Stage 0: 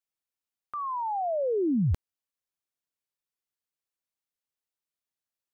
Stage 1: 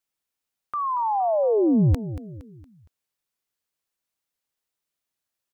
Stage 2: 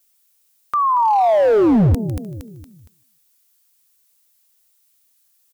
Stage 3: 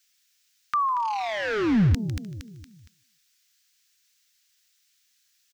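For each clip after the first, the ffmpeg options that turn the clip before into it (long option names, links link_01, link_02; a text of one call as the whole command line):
ffmpeg -i in.wav -af "aecho=1:1:232|464|696|928:0.211|0.0888|0.0373|0.0157,volume=6.5dB" out.wav
ffmpeg -i in.wav -filter_complex "[0:a]asplit=3[link_01][link_02][link_03];[link_02]adelay=151,afreqshift=38,volume=-22.5dB[link_04];[link_03]adelay=302,afreqshift=76,volume=-31.9dB[link_05];[link_01][link_04][link_05]amix=inputs=3:normalize=0,crystalizer=i=4:c=0,volume=18.5dB,asoftclip=hard,volume=-18.5dB,volume=7.5dB" out.wav
ffmpeg -i in.wav -af "firequalizer=gain_entry='entry(210,0);entry(560,-14);entry(1600,10);entry(5800,9);entry(10000,-5)':delay=0.05:min_phase=1,volume=-5.5dB" out.wav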